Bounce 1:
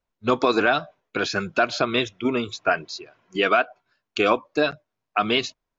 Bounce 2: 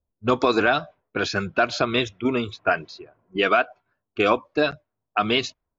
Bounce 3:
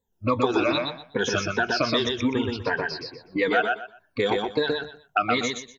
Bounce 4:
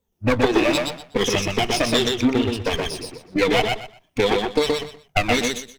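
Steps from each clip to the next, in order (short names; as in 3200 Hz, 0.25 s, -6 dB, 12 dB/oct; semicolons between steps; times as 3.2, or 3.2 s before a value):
low-pass opened by the level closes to 570 Hz, open at -19.5 dBFS; bell 73 Hz +9.5 dB 1 oct
moving spectral ripple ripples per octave 1, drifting -2.6 Hz, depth 23 dB; compressor 2.5:1, threshold -27 dBFS, peak gain reduction 13.5 dB; feedback echo 0.123 s, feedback 22%, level -3 dB; gain +1.5 dB
minimum comb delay 0.33 ms; gain +5.5 dB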